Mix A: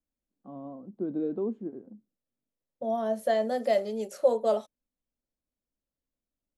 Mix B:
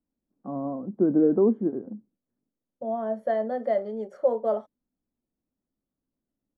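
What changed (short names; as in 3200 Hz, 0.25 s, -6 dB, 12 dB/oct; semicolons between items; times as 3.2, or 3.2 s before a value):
first voice +10.5 dB; master: add polynomial smoothing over 41 samples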